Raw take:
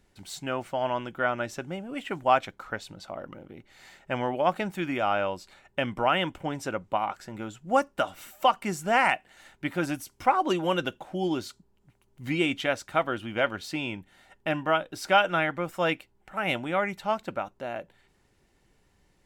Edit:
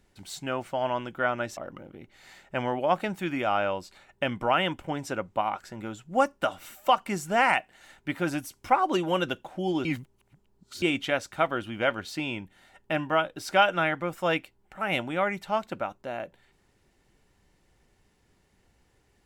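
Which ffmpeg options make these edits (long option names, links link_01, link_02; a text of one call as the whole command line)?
ffmpeg -i in.wav -filter_complex "[0:a]asplit=4[link_01][link_02][link_03][link_04];[link_01]atrim=end=1.572[link_05];[link_02]atrim=start=3.128:end=11.412[link_06];[link_03]atrim=start=11.408:end=12.382,asetpts=PTS-STARTPTS,areverse[link_07];[link_04]atrim=start=12.378[link_08];[link_05][link_06]acrossfade=duration=0.004:curve1=hsin:curve2=hsin[link_09];[link_09][link_07]acrossfade=duration=0.004:curve1=hsin:curve2=hsin[link_10];[link_10][link_08]acrossfade=duration=0.004:curve1=hsin:curve2=hsin" out.wav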